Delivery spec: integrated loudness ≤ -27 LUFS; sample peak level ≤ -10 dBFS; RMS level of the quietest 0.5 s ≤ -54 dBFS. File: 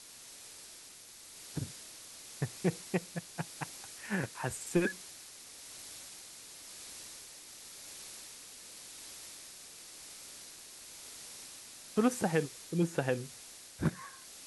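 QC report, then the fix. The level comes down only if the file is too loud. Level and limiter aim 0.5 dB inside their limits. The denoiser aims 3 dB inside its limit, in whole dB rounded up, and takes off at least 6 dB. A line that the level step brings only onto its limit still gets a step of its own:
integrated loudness -39.0 LUFS: pass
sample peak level -16.5 dBFS: pass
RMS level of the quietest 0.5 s -53 dBFS: fail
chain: noise reduction 6 dB, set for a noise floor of -53 dBFS

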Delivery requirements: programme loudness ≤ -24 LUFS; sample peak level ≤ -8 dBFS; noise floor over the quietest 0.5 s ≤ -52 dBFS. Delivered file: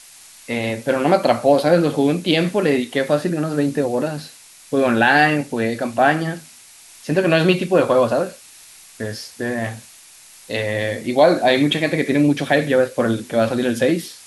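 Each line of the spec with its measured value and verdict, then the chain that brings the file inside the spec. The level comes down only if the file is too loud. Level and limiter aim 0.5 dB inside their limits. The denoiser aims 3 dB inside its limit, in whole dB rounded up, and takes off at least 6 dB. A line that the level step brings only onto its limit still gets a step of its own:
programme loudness -18.5 LUFS: fail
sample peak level -2.5 dBFS: fail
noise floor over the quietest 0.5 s -45 dBFS: fail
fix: noise reduction 6 dB, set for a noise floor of -45 dBFS; trim -6 dB

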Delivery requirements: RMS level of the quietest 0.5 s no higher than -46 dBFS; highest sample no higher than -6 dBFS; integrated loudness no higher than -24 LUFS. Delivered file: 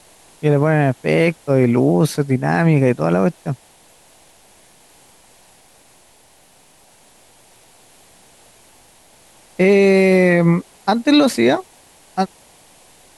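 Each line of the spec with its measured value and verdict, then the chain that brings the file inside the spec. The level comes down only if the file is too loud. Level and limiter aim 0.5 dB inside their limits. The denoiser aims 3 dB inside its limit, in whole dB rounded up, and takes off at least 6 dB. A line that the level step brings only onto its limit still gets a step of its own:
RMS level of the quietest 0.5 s -51 dBFS: pass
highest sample -4.0 dBFS: fail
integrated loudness -16.0 LUFS: fail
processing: trim -8.5 dB

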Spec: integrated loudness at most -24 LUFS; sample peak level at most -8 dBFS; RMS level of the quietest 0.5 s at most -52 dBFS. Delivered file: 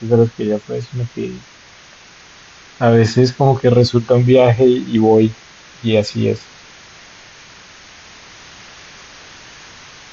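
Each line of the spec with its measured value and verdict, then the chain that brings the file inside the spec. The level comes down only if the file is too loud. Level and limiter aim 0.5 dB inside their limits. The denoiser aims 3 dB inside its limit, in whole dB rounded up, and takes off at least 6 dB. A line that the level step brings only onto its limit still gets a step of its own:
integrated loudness -14.5 LUFS: fail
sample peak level -2.0 dBFS: fail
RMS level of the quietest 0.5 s -43 dBFS: fail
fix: trim -10 dB

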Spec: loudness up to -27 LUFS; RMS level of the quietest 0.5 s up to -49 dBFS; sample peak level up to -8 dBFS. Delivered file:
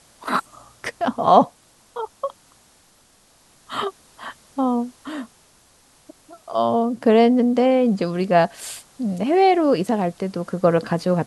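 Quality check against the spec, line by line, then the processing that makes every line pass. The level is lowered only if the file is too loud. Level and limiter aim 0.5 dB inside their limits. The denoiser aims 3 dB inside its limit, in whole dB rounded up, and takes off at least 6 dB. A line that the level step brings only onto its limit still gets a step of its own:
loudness -20.0 LUFS: fail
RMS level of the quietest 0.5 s -56 dBFS: pass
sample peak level -2.0 dBFS: fail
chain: trim -7.5 dB

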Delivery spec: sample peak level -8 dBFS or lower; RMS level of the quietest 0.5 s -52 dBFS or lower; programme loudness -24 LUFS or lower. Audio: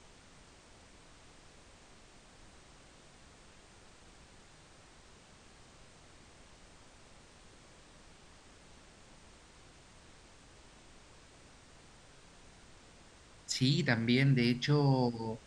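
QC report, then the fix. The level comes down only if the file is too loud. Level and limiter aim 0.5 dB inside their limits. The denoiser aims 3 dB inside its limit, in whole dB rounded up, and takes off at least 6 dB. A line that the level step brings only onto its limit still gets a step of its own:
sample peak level -14.0 dBFS: pass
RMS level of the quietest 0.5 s -58 dBFS: pass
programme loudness -30.0 LUFS: pass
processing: none needed

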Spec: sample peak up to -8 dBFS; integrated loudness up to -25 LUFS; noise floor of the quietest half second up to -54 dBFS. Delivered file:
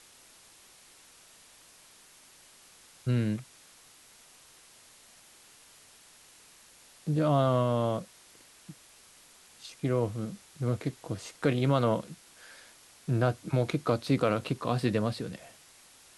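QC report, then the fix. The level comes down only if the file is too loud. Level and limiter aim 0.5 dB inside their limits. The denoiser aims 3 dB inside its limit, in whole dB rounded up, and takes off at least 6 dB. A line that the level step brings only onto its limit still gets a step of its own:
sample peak -12.5 dBFS: pass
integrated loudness -30.0 LUFS: pass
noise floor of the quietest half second -57 dBFS: pass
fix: none needed

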